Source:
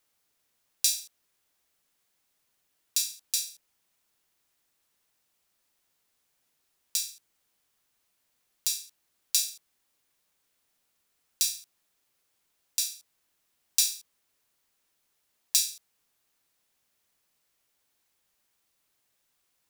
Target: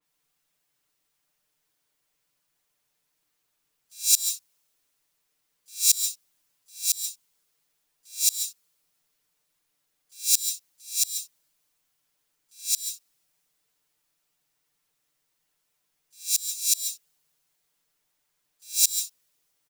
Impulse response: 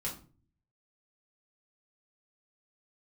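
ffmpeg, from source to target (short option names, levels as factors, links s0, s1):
-filter_complex "[0:a]areverse,asplit=2[s0][s1];[s1]asetrate=55563,aresample=44100,atempo=0.793701,volume=0.251[s2];[s0][s2]amix=inputs=2:normalize=0,aecho=1:1:6.7:0.86,acontrast=38,asplit=2[s3][s4];[1:a]atrim=start_sample=2205,atrim=end_sample=4410,adelay=140[s5];[s4][s5]afir=irnorm=-1:irlink=0,volume=0.398[s6];[s3][s6]amix=inputs=2:normalize=0,adynamicequalizer=threshold=0.0178:dfrequency=3400:dqfactor=0.7:tfrequency=3400:tqfactor=0.7:attack=5:release=100:ratio=0.375:range=4:mode=boostabove:tftype=highshelf,volume=0.316"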